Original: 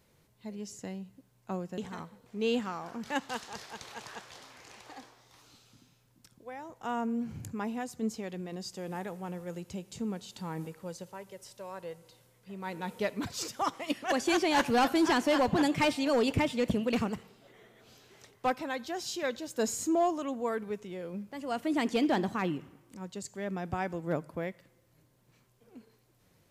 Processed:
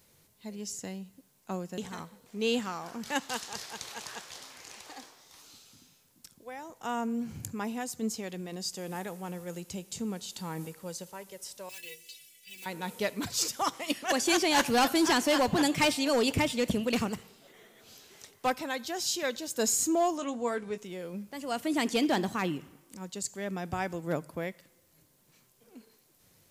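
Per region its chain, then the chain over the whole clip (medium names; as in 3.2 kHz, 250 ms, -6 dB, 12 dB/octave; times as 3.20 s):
11.69–12.66 s: block-companded coder 5-bit + resonant high shelf 1.7 kHz +13.5 dB, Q 3 + inharmonic resonator 72 Hz, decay 0.46 s, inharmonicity 0.03
20.17–20.78 s: low-pass 9.3 kHz 24 dB/octave + doubling 21 ms -10 dB
whole clip: treble shelf 3.8 kHz +11 dB; hum notches 60/120 Hz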